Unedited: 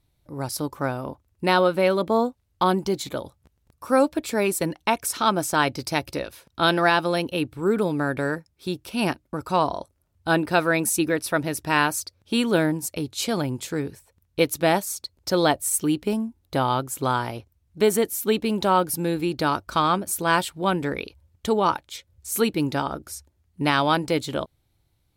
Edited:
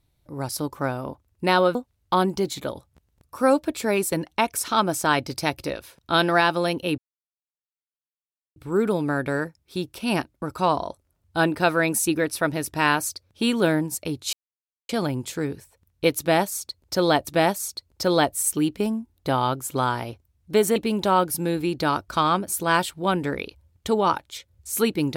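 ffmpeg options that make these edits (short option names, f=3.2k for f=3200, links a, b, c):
-filter_complex "[0:a]asplit=6[a][b][c][d][e][f];[a]atrim=end=1.752[g];[b]atrim=start=2.238:end=7.47,asetpts=PTS-STARTPTS,afade=t=out:st=5.228:d=0.004:c=hsin,apad=pad_dur=1.58[h];[c]atrim=start=7.47:end=13.24,asetpts=PTS-STARTPTS,afade=t=in:d=0.004:c=hsin,afade=t=out:st=5.766:d=0.004:c=hsin,apad=pad_dur=0.56[i];[d]atrim=start=13.24:end=15.622,asetpts=PTS-STARTPTS,afade=t=in:d=0.004:c=hsin[j];[e]atrim=start=14.538:end=18.032[k];[f]atrim=start=18.348[l];[h][i][j]concat=n=3:v=0:a=1[m];[g][m]acrossfade=d=0.004:c1=hsin:c2=hsin[n];[n][k]acrossfade=d=0.004:c1=hsin:c2=hsin[o];[o][l]acrossfade=d=0.004:c1=hsin:c2=hsin"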